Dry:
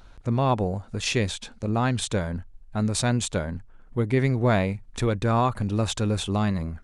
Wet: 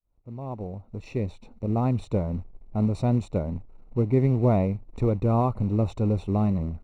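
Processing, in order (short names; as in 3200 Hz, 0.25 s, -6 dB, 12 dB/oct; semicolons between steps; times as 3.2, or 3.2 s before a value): opening faded in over 1.94 s; short-mantissa float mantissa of 2-bit; running mean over 27 samples; gain +1.5 dB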